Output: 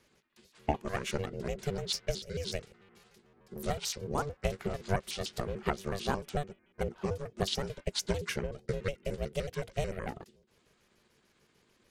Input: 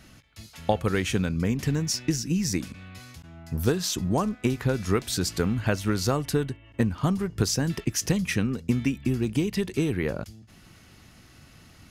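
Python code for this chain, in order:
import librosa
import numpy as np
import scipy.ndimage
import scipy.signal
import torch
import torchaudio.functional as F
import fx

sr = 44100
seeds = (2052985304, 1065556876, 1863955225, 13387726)

y = fx.pitch_trill(x, sr, semitones=-6.5, every_ms=74)
y = fx.low_shelf(y, sr, hz=350.0, db=-4.5)
y = y * np.sin(2.0 * np.pi * 290.0 * np.arange(len(y)) / sr)
y = fx.upward_expand(y, sr, threshold_db=-46.0, expansion=1.5)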